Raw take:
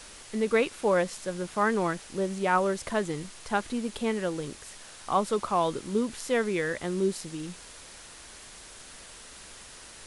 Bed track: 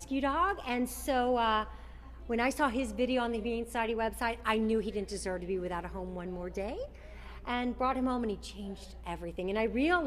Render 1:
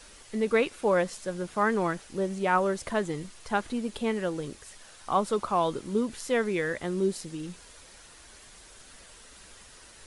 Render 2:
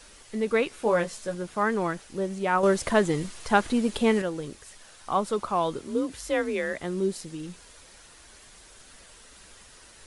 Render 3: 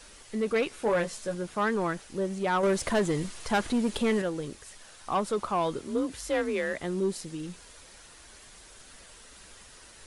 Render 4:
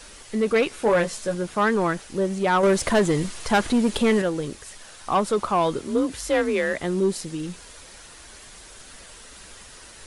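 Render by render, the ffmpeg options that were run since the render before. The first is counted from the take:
-af "afftdn=nr=6:nf=-48"
-filter_complex "[0:a]asettb=1/sr,asplit=3[s0][s1][s2];[s0]atrim=end=0.684[s3];[s1]atrim=start=0.68:end=1.35,asetpts=PTS-STARTPTS,afade=t=in:d=0.004:c=qsin,afade=t=out:st=0.666:d=0.004:c=qsin,asplit=2[s4][s5];[s5]adelay=18,volume=0.531[s6];[s4][s6]amix=inputs=2:normalize=0,atrim=end_sample=29547[s7];[s2]atrim=start=1.346[s8];[s3][s7]acrossfade=d=0.004:c1=hsin:c2=qsin[s9];[s9][s8]acrossfade=d=0.004:c1=qsin:c2=hsin,asettb=1/sr,asplit=3[s10][s11][s12];[s10]atrim=end=2.634[s13];[s11]atrim=start=2.63:end=4.22,asetpts=PTS-STARTPTS,afade=t=in:d=0.004:c=qsin,afade=t=out:st=1.586:d=0.004:c=qsin,acontrast=76[s14];[s12]atrim=start=4.216[s15];[s13][s14]acrossfade=d=0.004:c1=hsin:c2=qsin[s16];[s16][s15]acrossfade=d=0.004:c1=qsin:c2=hsin,asettb=1/sr,asplit=3[s17][s18][s19];[s17]atrim=end=5.794[s20];[s18]atrim=start=5.79:end=6.78,asetpts=PTS-STARTPTS,afade=t=in:d=0.004:c=qsin,afade=t=out:st=0.986:d=0.004:c=qsin,afreqshift=39[s21];[s19]atrim=start=6.776[s22];[s20][s21]acrossfade=d=0.004:c1=hsin:c2=qsin[s23];[s23][s22]acrossfade=d=0.004:c1=qsin:c2=hsin"
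-af "asoftclip=type=tanh:threshold=0.106"
-af "volume=2.11"

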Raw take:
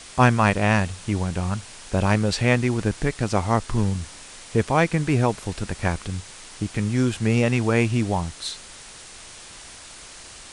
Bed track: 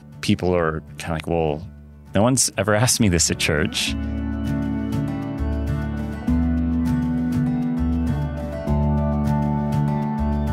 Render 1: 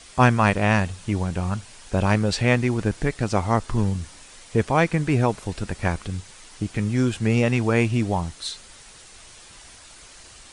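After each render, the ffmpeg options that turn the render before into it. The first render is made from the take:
-af "afftdn=nr=6:nf=-43"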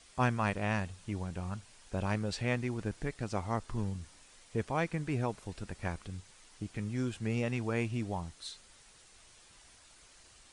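-af "volume=0.224"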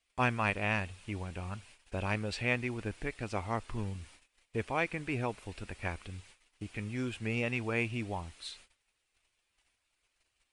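-af "agate=range=0.0794:threshold=0.00178:ratio=16:detection=peak,equalizer=f=160:t=o:w=0.67:g=-7,equalizer=f=2500:t=o:w=0.67:g=8,equalizer=f=6300:t=o:w=0.67:g=-4"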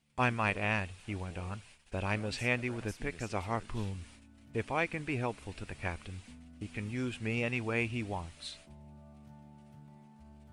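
-filter_complex "[1:a]volume=0.0211[s0];[0:a][s0]amix=inputs=2:normalize=0"

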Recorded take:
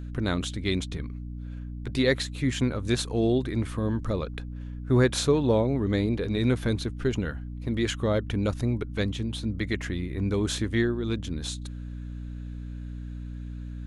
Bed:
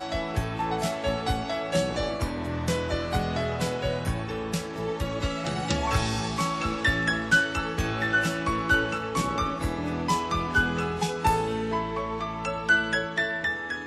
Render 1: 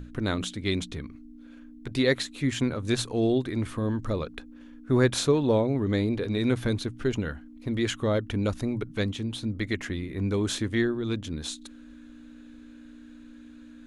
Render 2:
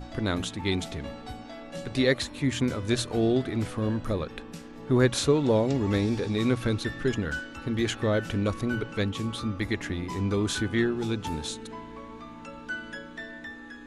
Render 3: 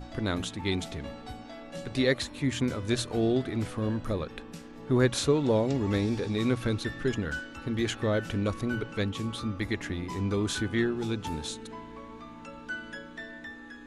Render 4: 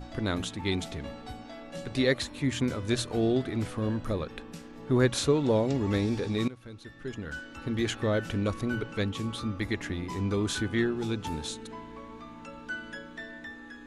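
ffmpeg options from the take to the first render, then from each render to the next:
-af "bandreject=f=60:t=h:w=6,bandreject=f=120:t=h:w=6,bandreject=f=180:t=h:w=6"
-filter_complex "[1:a]volume=0.211[s0];[0:a][s0]amix=inputs=2:normalize=0"
-af "volume=0.794"
-filter_complex "[0:a]asplit=2[s0][s1];[s0]atrim=end=6.48,asetpts=PTS-STARTPTS,afade=t=out:st=6.476:d=0.004:c=hsin:silence=0.11885[s2];[s1]atrim=start=6.48,asetpts=PTS-STARTPTS,afade=t=in:d=1.16:c=qua:silence=0.11885[s3];[s2][s3]concat=n=2:v=0:a=1"

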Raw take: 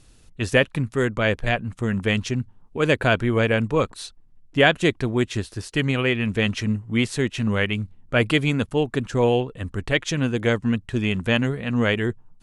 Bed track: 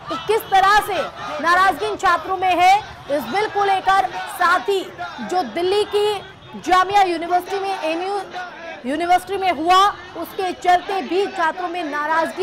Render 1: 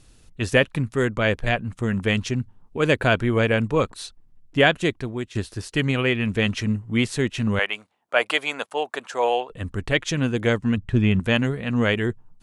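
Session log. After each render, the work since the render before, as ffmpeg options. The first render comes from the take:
-filter_complex "[0:a]asettb=1/sr,asplit=3[s0][s1][s2];[s0]atrim=end=7.594[s3];[s1]atrim=start=7.59:end=9.5,asetpts=PTS-STARTPTS,afade=t=in:d=0.004:c=qsin,afade=t=out:st=1.906:d=0.004:c=qsin,highpass=f=710:t=q:w=1.7[s4];[s2]atrim=start=9.496[s5];[s3][s4]acrossfade=d=0.004:c1=hsin:c2=qsin[s6];[s6][s5]acrossfade=d=0.004:c1=qsin:c2=hsin,asettb=1/sr,asplit=3[s7][s8][s9];[s7]atrim=end=10.774[s10];[s8]atrim=start=10.77:end=11.2,asetpts=PTS-STARTPTS,afade=t=in:d=0.004:c=qsin,afade=t=out:st=0.426:d=0.004:c=qsin,bass=f=250:g=7,treble=f=4000:g=-9[s11];[s9]atrim=start=11.196[s12];[s10][s11]acrossfade=d=0.004:c1=hsin:c2=qsin[s13];[s13][s12]acrossfade=d=0.004:c1=qsin:c2=hsin,asplit=2[s14][s15];[s14]atrim=end=5.35,asetpts=PTS-STARTPTS,afade=t=out:st=4.58:d=0.77:silence=0.266073[s16];[s15]atrim=start=5.35,asetpts=PTS-STARTPTS,afade=t=in:d=0.004:c=hsin:silence=0.266073[s17];[s16][s17]concat=n=2:v=0:a=1"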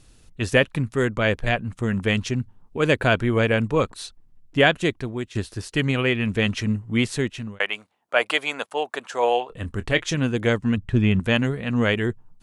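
-filter_complex "[0:a]asettb=1/sr,asplit=3[s0][s1][s2];[s0]atrim=end=9.074[s3];[s1]atrim=start=9.07:end=10.15,asetpts=PTS-STARTPTS,afade=t=in:d=0.004:c=qsin,afade=t=out:st=1.076:d=0.004:c=qsin,asplit=2[s4][s5];[s5]adelay=25,volume=0.2[s6];[s4][s6]amix=inputs=2:normalize=0,atrim=end_sample=47628[s7];[s2]atrim=start=10.146[s8];[s3][s7]acrossfade=d=0.004:c1=hsin:c2=qsin[s9];[s9][s8]acrossfade=d=0.004:c1=qsin:c2=hsin,asplit=2[s10][s11];[s10]atrim=end=7.6,asetpts=PTS-STARTPTS,afade=t=out:st=7.16:d=0.44[s12];[s11]atrim=start=7.6,asetpts=PTS-STARTPTS,afade=t=in:d=0.004:c=hsin[s13];[s12][s13]concat=n=2:v=0:a=1"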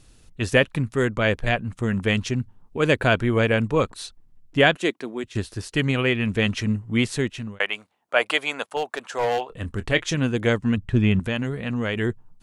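-filter_complex "[0:a]asettb=1/sr,asplit=3[s0][s1][s2];[s0]atrim=end=4.764[s3];[s1]atrim=start=4.76:end=5.24,asetpts=PTS-STARTPTS,afade=t=in:d=0.004:c=qsin,afade=t=out:st=0.476:d=0.004:c=qsin,highpass=f=220:w=0.5412,highpass=f=220:w=1.3066[s4];[s2]atrim=start=5.236[s5];[s3][s4]acrossfade=d=0.004:c1=hsin:c2=qsin[s6];[s6][s5]acrossfade=d=0.004:c1=qsin:c2=hsin,asettb=1/sr,asplit=3[s7][s8][s9];[s7]atrim=end=8.764[s10];[s8]atrim=start=8.76:end=9.82,asetpts=PTS-STARTPTS,afade=t=in:d=0.004:c=qsin,afade=t=out:st=1.056:d=0.004:c=qsin,asoftclip=type=hard:threshold=0.119[s11];[s9]atrim=start=9.816[s12];[s10][s11]acrossfade=d=0.004:c1=hsin:c2=qsin[s13];[s13][s12]acrossfade=d=0.004:c1=qsin:c2=hsin,asettb=1/sr,asplit=3[s14][s15][s16];[s14]atrim=end=11.194[s17];[s15]atrim=start=11.19:end=11.96,asetpts=PTS-STARTPTS,afade=t=in:d=0.004:c=qsin,afade=t=out:st=0.766:d=0.004:c=qsin,acompressor=threshold=0.0794:ratio=3:attack=3.2:release=140:knee=1:detection=peak[s18];[s16]atrim=start=11.956[s19];[s17][s18]acrossfade=d=0.004:c1=hsin:c2=qsin[s20];[s20][s19]acrossfade=d=0.004:c1=qsin:c2=hsin"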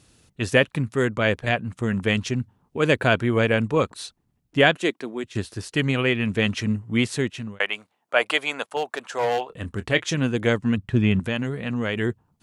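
-af "highpass=85"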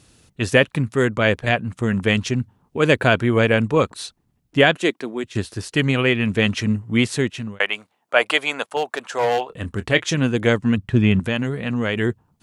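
-af "volume=1.5,alimiter=limit=0.891:level=0:latency=1"

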